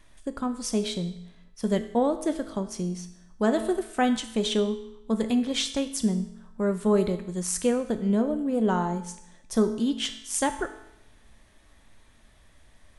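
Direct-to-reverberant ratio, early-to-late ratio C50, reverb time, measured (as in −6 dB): 7.5 dB, 11.0 dB, 0.85 s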